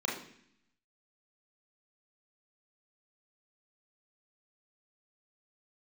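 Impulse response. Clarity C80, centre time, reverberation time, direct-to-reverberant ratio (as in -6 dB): 9.5 dB, 42 ms, 0.65 s, -3.5 dB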